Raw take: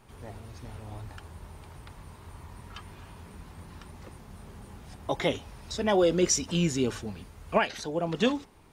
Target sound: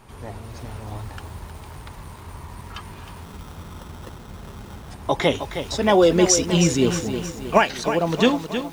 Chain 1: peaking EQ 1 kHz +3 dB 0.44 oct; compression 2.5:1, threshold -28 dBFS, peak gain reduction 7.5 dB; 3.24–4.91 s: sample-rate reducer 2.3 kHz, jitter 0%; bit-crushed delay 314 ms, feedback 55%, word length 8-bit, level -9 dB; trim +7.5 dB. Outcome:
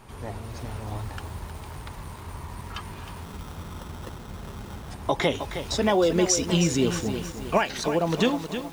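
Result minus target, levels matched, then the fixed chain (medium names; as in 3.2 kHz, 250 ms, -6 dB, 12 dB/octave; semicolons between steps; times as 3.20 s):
compression: peak gain reduction +7.5 dB
peaking EQ 1 kHz +3 dB 0.44 oct; 3.24–4.91 s: sample-rate reducer 2.3 kHz, jitter 0%; bit-crushed delay 314 ms, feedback 55%, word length 8-bit, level -9 dB; trim +7.5 dB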